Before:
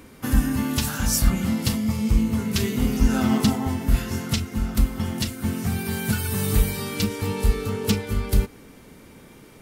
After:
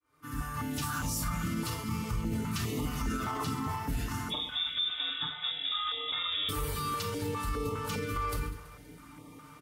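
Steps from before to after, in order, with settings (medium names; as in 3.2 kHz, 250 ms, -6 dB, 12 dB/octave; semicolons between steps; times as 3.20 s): fade-in on the opening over 0.96 s; 4.30–6.49 s: frequency inversion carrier 3.6 kHz; high-pass 45 Hz 24 dB/octave; peaking EQ 1.2 kHz +14.5 dB 0.44 oct; comb 6.7 ms, depth 45%; multi-head delay 65 ms, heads second and third, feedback 59%, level -21.5 dB; FDN reverb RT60 0.35 s, low-frequency decay 1.5×, high-frequency decay 0.95×, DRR 2 dB; peak limiter -14.5 dBFS, peak gain reduction 10.5 dB; step-sequenced notch 4.9 Hz 210–1500 Hz; trim -8.5 dB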